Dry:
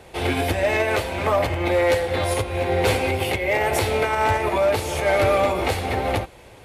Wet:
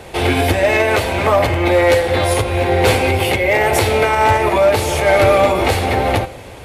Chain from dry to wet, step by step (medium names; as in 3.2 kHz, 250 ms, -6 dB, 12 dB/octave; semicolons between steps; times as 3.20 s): in parallel at +1 dB: peak limiter -22 dBFS, peak gain reduction 8.5 dB; on the sum: reverberation RT60 1.4 s, pre-delay 9 ms, DRR 15 dB; trim +3.5 dB